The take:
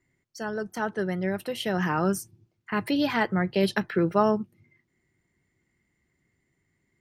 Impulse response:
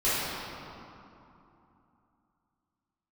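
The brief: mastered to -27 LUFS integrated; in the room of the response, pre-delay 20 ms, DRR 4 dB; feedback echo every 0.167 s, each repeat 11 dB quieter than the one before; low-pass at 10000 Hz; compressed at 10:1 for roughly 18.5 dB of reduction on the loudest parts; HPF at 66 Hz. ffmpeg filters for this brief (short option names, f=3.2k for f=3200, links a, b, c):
-filter_complex "[0:a]highpass=66,lowpass=10k,acompressor=threshold=-37dB:ratio=10,aecho=1:1:167|334|501:0.282|0.0789|0.0221,asplit=2[a][b];[1:a]atrim=start_sample=2205,adelay=20[c];[b][c]afir=irnorm=-1:irlink=0,volume=-18dB[d];[a][d]amix=inputs=2:normalize=0,volume=13dB"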